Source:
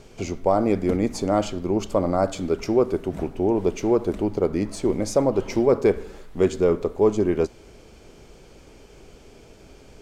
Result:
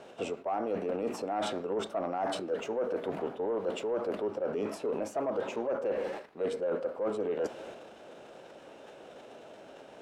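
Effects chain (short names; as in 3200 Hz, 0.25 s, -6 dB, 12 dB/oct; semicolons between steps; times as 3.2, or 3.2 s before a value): transient shaper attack +2 dB, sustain +7 dB; HPF 190 Hz 12 dB/oct; tone controls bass -8 dB, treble -6 dB; formant shift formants +3 st; in parallel at +1 dB: limiter -15.5 dBFS, peak gain reduction 7.5 dB; on the sum: high shelf 3700 Hz -11 dB; reverse; compressor 5:1, threshold -24 dBFS, peak gain reduction 12.5 dB; reverse; soft clip -17 dBFS, distortion -22 dB; gain -5 dB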